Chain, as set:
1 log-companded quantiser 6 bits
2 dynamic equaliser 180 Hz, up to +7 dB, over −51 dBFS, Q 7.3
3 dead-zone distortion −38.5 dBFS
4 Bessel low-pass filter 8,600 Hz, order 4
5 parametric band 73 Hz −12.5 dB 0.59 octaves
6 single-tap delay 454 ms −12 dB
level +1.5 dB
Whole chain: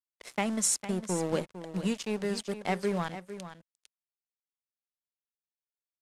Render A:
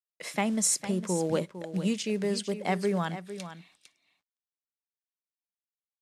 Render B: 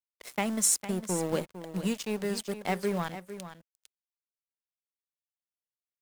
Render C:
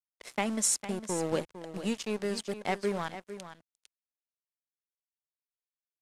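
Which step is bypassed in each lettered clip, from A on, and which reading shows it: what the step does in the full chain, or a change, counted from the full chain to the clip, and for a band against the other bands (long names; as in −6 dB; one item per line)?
3, distortion level −13 dB
4, 8 kHz band +2.5 dB
2, change in momentary loudness spread +2 LU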